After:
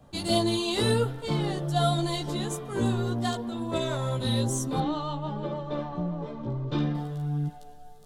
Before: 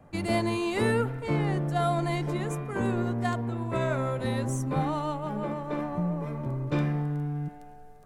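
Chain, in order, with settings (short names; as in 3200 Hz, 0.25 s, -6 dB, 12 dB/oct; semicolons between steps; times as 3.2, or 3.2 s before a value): resonant high shelf 2800 Hz +6.5 dB, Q 3; chorus voices 2, 0.54 Hz, delay 15 ms, depth 3.1 ms; 4.8–6.95 air absorption 150 m; gain +3 dB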